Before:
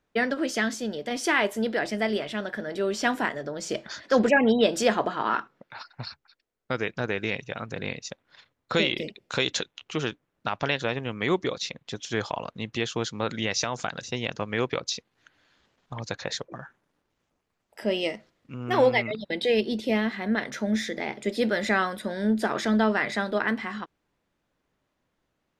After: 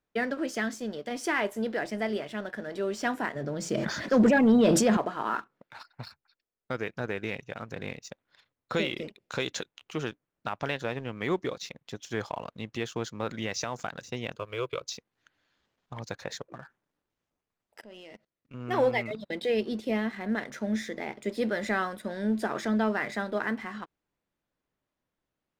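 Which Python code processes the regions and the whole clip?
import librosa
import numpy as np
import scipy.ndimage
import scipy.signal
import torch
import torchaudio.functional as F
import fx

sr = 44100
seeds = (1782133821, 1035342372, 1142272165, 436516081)

y = fx.chain(x, sr, fx.peak_eq(hz=170.0, db=9.5, octaves=1.6),
    fx.sustainer(db_per_s=27.0), at=(3.35, 4.97))
y = fx.chain(y, sr, fx.high_shelf(hz=4700.0, db=11.5),
    fx.fixed_phaser(hz=1200.0, stages=8), at=(14.36, 14.84))
y = fx.chain(y, sr, fx.level_steps(step_db=21),
    fx.high_shelf(hz=9000.0, db=-9.0), at=(17.81, 18.54))
y = fx.dynamic_eq(y, sr, hz=3800.0, q=1.0, threshold_db=-44.0, ratio=4.0, max_db=-5)
y = fx.leveller(y, sr, passes=1)
y = y * 10.0 ** (-7.5 / 20.0)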